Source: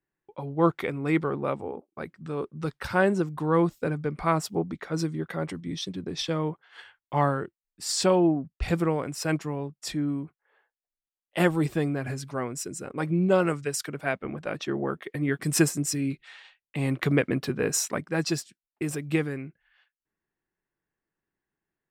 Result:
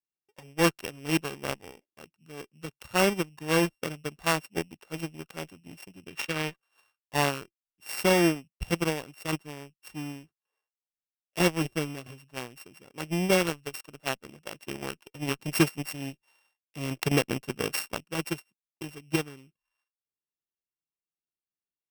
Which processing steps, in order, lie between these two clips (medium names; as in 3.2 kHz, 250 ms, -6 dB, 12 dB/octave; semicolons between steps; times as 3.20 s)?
sorted samples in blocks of 16 samples; time-frequency box 6.08–6.57 s, 1.1–4.1 kHz +6 dB; Chebyshev shaper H 5 -17 dB, 7 -13 dB, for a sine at -9 dBFS; trim -2 dB